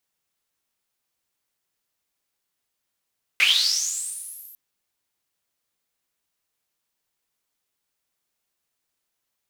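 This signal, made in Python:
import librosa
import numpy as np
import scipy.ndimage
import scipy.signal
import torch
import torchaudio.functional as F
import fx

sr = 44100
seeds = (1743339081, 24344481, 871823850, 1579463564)

y = fx.riser_noise(sr, seeds[0], length_s=1.15, colour='white', kind='bandpass', start_hz=2200.0, end_hz=13000.0, q=8.9, swell_db=-32.5, law='linear')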